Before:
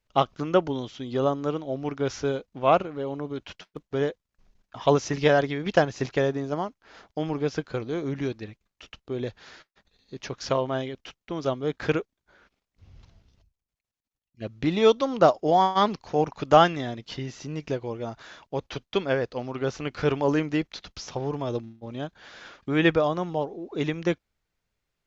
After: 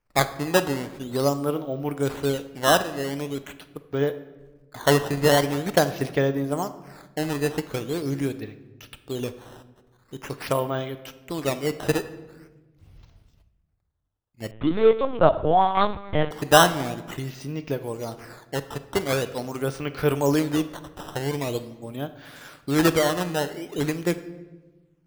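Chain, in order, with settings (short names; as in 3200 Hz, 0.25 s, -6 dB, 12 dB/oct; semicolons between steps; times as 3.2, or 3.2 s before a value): decimation with a swept rate 11×, swing 160% 0.44 Hz; shoebox room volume 700 m³, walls mixed, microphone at 0.42 m; 14.51–16.31 LPC vocoder at 8 kHz pitch kept; gain +1 dB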